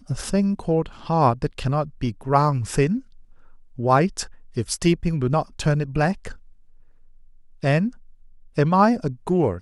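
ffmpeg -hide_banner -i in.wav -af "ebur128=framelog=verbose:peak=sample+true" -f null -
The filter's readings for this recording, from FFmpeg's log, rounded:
Integrated loudness:
  I:         -22.3 LUFS
  Threshold: -33.4 LUFS
Loudness range:
  LRA:         2.9 LU
  Threshold: -43.8 LUFS
  LRA low:   -25.5 LUFS
  LRA high:  -22.6 LUFS
Sample peak:
  Peak:       -4.5 dBFS
True peak:
  Peak:       -4.5 dBFS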